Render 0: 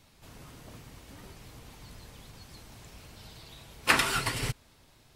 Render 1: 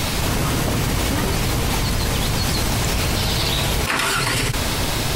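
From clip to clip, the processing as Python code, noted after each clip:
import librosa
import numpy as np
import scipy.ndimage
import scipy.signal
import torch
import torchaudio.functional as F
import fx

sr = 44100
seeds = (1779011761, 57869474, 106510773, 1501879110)

y = fx.env_flatten(x, sr, amount_pct=100)
y = y * 10.0 ** (-1.0 / 20.0)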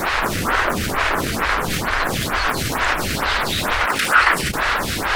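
y = fx.cycle_switch(x, sr, every=2, mode='inverted')
y = fx.peak_eq(y, sr, hz=1500.0, db=14.0, octaves=1.6)
y = fx.stagger_phaser(y, sr, hz=2.2)
y = y * 10.0 ** (-1.0 / 20.0)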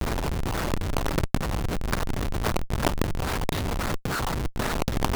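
y = fx.filter_lfo_lowpass(x, sr, shape='square', hz=3.7, low_hz=860.0, high_hz=5400.0, q=2.1)
y = fx.schmitt(y, sr, flips_db=-15.0)
y = fx.over_compress(y, sr, threshold_db=-24.0, ratio=-0.5)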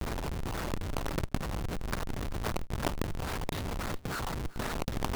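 y = x + 10.0 ** (-20.0 / 20.0) * np.pad(x, (int(385 * sr / 1000.0), 0))[:len(x)]
y = y * 10.0 ** (-7.5 / 20.0)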